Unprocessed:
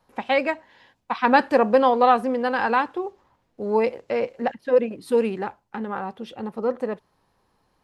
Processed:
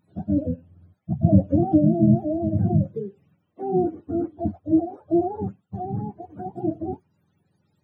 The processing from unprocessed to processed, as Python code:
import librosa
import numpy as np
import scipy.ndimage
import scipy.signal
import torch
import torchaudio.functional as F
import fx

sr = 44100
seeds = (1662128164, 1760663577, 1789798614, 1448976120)

y = fx.octave_mirror(x, sr, pivot_hz=400.0)